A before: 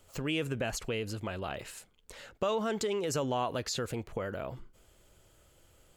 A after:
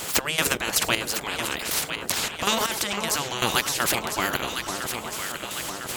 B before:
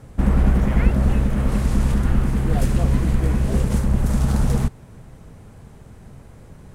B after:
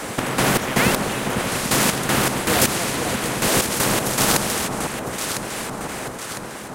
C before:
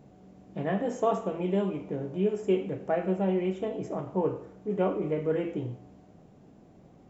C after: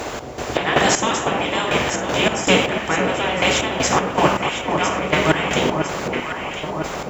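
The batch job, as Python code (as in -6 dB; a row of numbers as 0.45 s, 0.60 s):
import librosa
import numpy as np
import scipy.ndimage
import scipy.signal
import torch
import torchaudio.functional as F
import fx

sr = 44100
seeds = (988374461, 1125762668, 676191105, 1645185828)

p1 = fx.spec_gate(x, sr, threshold_db=-10, keep='weak')
p2 = fx.highpass(p1, sr, hz=84.0, slope=6)
p3 = fx.step_gate(p2, sr, bpm=79, pattern='x.x.x....', floor_db=-12.0, edge_ms=4.5)
p4 = p3 + fx.echo_alternate(p3, sr, ms=502, hz=1200.0, feedback_pct=66, wet_db=-10.0, dry=0)
p5 = fx.spectral_comp(p4, sr, ratio=2.0)
y = p5 * 10.0 ** (-1.5 / 20.0) / np.max(np.abs(p5))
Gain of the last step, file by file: +23.0 dB, +10.0 dB, +22.0 dB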